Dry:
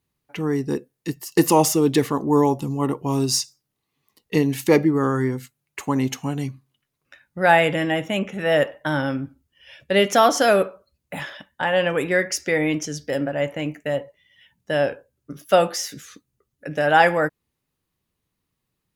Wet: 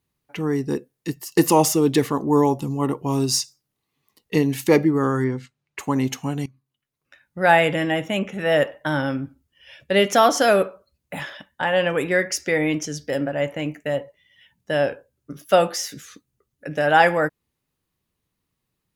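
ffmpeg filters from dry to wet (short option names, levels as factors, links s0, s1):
-filter_complex "[0:a]asettb=1/sr,asplit=3[s0][s1][s2];[s0]atrim=end=5.244[s3];[s1]atrim=start=5.24:end=5.79,asetpts=PTS-STARTPTS,afade=t=in:d=0.004:c=qsin,afade=t=out:st=0.546:d=0.004:c=qsin,lowpass=4800[s4];[s2]atrim=start=5.786[s5];[s3][s4]acrossfade=d=0.004:c1=hsin:c2=qsin[s6];[s6][s5]acrossfade=d=0.004:c1=qsin:c2=hsin,asplit=2[s7][s8];[s7]atrim=end=6.46,asetpts=PTS-STARTPTS,afade=t=out:st=6.456:d=0.004:c=hsin:silence=0.0944061[s9];[s8]atrim=start=6.46,asetpts=PTS-STARTPTS,afade=t=in:d=1.03:silence=0.0944061[s10];[s9][s10]concat=n=2:v=0:a=1"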